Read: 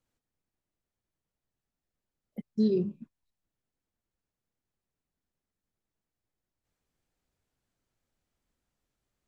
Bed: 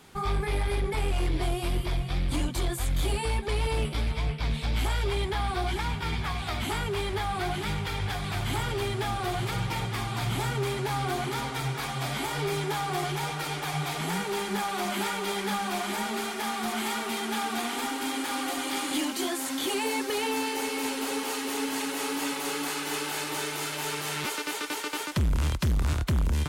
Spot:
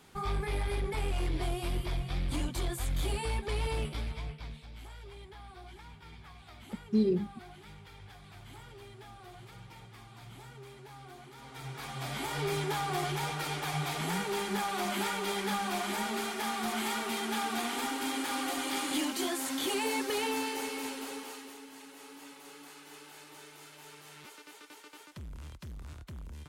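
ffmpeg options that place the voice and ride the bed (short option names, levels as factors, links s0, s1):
-filter_complex "[0:a]adelay=4350,volume=0.891[s0];[1:a]volume=4.22,afade=t=out:st=3.7:d=0.96:silence=0.16788,afade=t=in:st=11.37:d=1.14:silence=0.133352,afade=t=out:st=20.18:d=1.43:silence=0.149624[s1];[s0][s1]amix=inputs=2:normalize=0"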